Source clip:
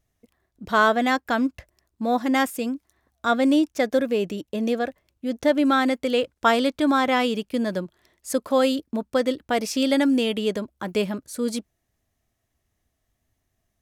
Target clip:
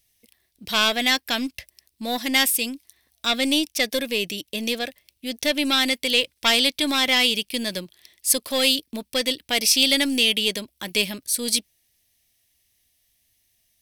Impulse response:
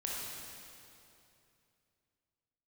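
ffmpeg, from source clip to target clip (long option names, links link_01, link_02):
-af "equalizer=frequency=7000:width=4.1:gain=-9.5,aeval=exprs='(tanh(2.82*val(0)+0.3)-tanh(0.3))/2.82':channel_layout=same,aexciter=amount=6.7:drive=6.5:freq=2000,volume=-4dB"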